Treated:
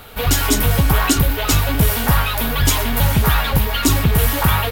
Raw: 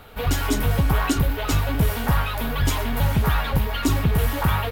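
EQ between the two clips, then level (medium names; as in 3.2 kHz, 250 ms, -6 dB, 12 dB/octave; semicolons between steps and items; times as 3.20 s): treble shelf 3.2 kHz +8.5 dB; +4.5 dB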